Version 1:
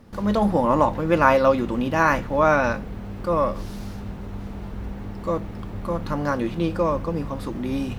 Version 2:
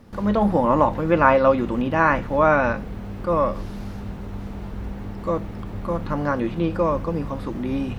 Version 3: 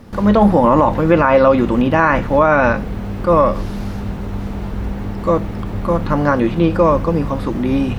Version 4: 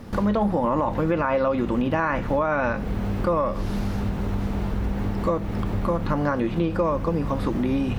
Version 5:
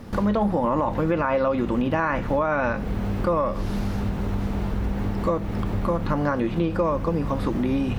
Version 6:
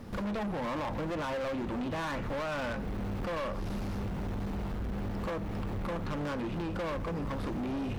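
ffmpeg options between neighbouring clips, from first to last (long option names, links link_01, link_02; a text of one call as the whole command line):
ffmpeg -i in.wav -filter_complex "[0:a]acrossover=split=3300[link_01][link_02];[link_02]acompressor=threshold=-55dB:ratio=4:attack=1:release=60[link_03];[link_01][link_03]amix=inputs=2:normalize=0,volume=1dB" out.wav
ffmpeg -i in.wav -af "alimiter=level_in=9.5dB:limit=-1dB:release=50:level=0:latency=1,volume=-1dB" out.wav
ffmpeg -i in.wav -af "acompressor=threshold=-21dB:ratio=4" out.wav
ffmpeg -i in.wav -af anull out.wav
ffmpeg -i in.wav -af "asoftclip=type=hard:threshold=-26.5dB,volume=-5.5dB" out.wav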